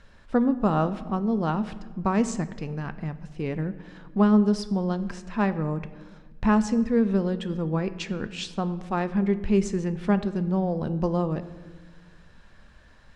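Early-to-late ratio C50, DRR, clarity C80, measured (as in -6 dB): 14.5 dB, 11.5 dB, 16.0 dB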